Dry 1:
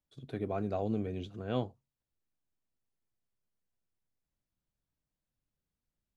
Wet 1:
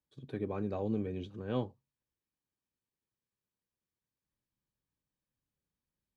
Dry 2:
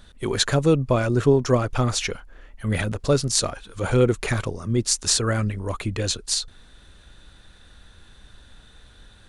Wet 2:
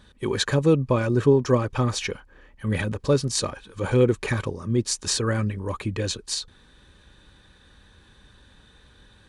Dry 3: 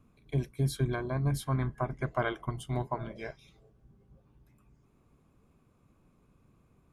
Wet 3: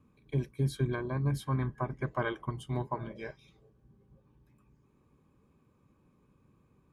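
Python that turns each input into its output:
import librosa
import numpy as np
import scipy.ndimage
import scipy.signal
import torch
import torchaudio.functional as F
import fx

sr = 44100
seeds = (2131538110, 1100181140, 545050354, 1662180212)

y = fx.high_shelf(x, sr, hz=5500.0, db=-6.5)
y = fx.notch_comb(y, sr, f0_hz=690.0)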